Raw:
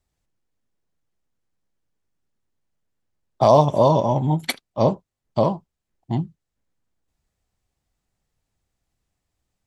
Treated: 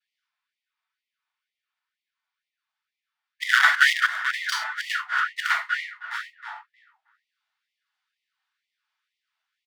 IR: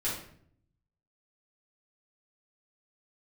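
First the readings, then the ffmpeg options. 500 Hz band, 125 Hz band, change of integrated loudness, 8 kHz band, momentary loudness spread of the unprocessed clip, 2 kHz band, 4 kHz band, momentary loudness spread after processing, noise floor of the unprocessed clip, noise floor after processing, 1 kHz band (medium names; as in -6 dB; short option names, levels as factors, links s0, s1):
under -35 dB, under -40 dB, -2.5 dB, +4.0 dB, 15 LU, +20.0 dB, +7.5 dB, 16 LU, -82 dBFS, under -85 dBFS, -5.5 dB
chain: -filter_complex "[0:a]highpass=f=350:t=q:w=0.5412,highpass=f=350:t=q:w=1.307,lowpass=f=3100:t=q:w=0.5176,lowpass=f=3100:t=q:w=0.7071,lowpass=f=3100:t=q:w=1.932,afreqshift=130,aeval=exprs='abs(val(0))':c=same,asplit=2[s0][s1];[s1]adelay=314,lowpass=f=2200:p=1,volume=0.562,asplit=2[s2][s3];[s3]adelay=314,lowpass=f=2200:p=1,volume=0.26,asplit=2[s4][s5];[s5]adelay=314,lowpass=f=2200:p=1,volume=0.26[s6];[s2][s4][s6]amix=inputs=3:normalize=0[s7];[s0][s7]amix=inputs=2:normalize=0[s8];[1:a]atrim=start_sample=2205,atrim=end_sample=6174[s9];[s8][s9]afir=irnorm=-1:irlink=0,asplit=2[s10][s11];[s11]aeval=exprs='0.794*(abs(mod(val(0)/0.794+3,4)-2)-1)':c=same,volume=0.631[s12];[s10][s12]amix=inputs=2:normalize=0,afftfilt=real='re*gte(b*sr/1024,640*pow(1900/640,0.5+0.5*sin(2*PI*2.1*pts/sr)))':imag='im*gte(b*sr/1024,640*pow(1900/640,0.5+0.5*sin(2*PI*2.1*pts/sr)))':win_size=1024:overlap=0.75"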